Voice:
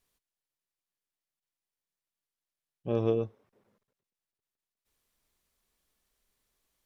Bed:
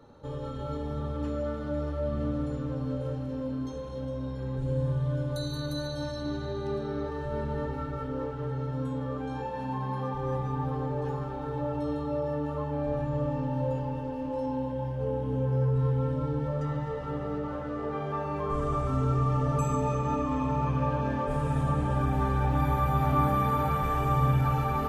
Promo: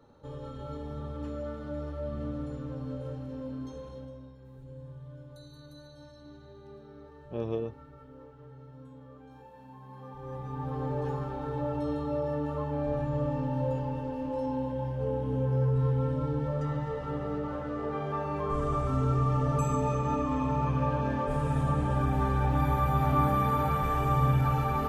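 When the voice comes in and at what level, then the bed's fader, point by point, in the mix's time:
4.45 s, -5.0 dB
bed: 3.88 s -5 dB
4.39 s -17 dB
9.81 s -17 dB
10.89 s -0.5 dB

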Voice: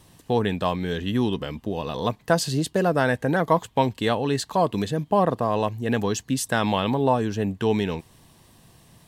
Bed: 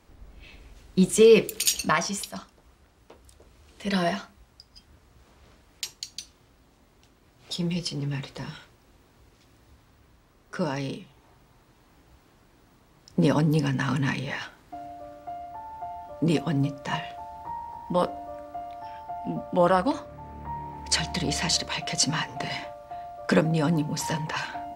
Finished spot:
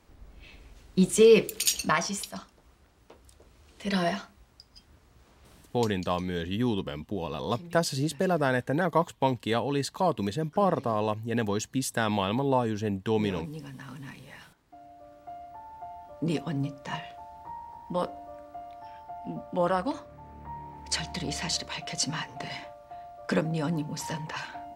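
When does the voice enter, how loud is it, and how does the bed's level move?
5.45 s, -4.5 dB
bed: 5.60 s -2 dB
6.18 s -17 dB
14.20 s -17 dB
15.31 s -5.5 dB

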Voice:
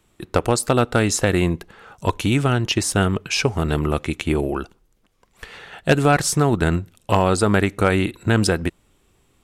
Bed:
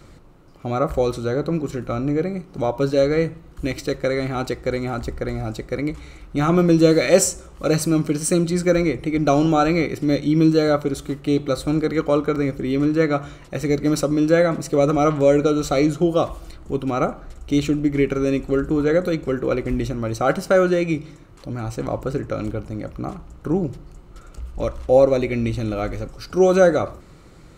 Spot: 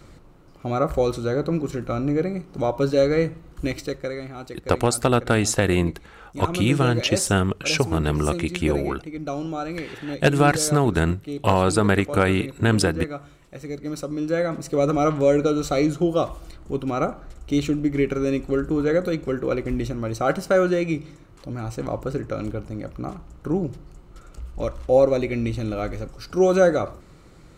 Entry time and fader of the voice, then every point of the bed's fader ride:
4.35 s, -1.5 dB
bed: 3.67 s -1 dB
4.33 s -12 dB
13.76 s -12 dB
14.89 s -2.5 dB

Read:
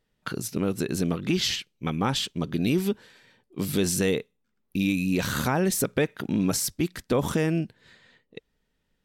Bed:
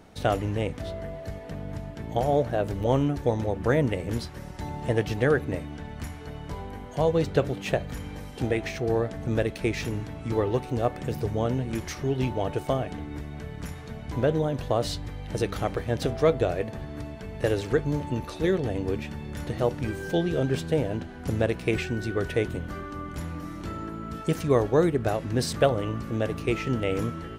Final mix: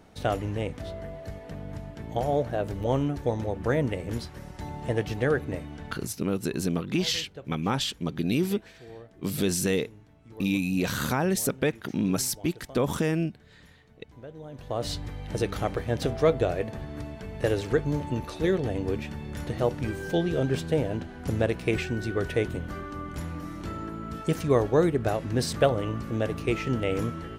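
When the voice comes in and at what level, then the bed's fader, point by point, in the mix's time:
5.65 s, -1.5 dB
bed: 5.90 s -2.5 dB
6.19 s -20 dB
14.33 s -20 dB
14.91 s -0.5 dB

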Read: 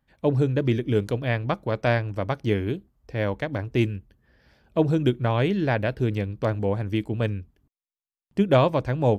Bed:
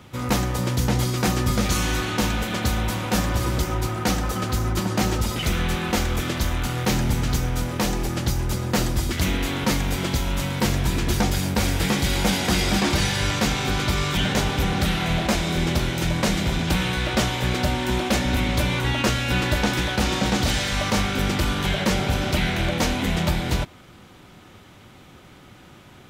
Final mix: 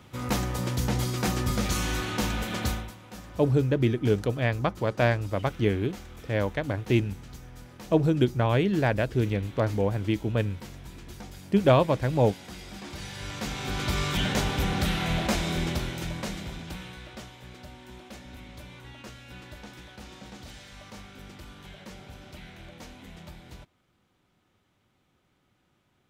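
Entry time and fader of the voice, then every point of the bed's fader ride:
3.15 s, -1.0 dB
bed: 2.71 s -5.5 dB
2.96 s -21.5 dB
12.72 s -21.5 dB
13.97 s -4.5 dB
15.48 s -4.5 dB
17.38 s -23 dB

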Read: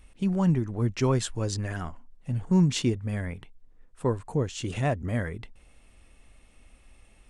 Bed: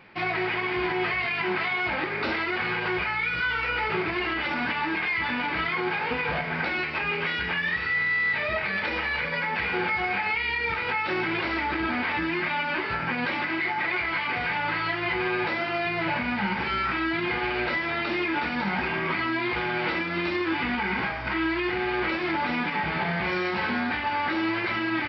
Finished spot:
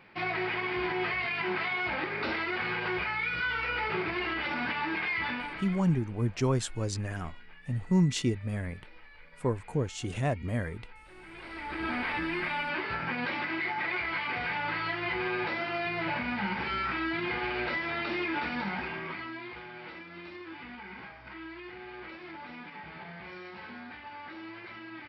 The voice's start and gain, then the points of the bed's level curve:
5.40 s, -3.0 dB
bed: 5.28 s -4.5 dB
6.11 s -27.5 dB
11.07 s -27.5 dB
11.88 s -5 dB
18.55 s -5 dB
19.70 s -17.5 dB

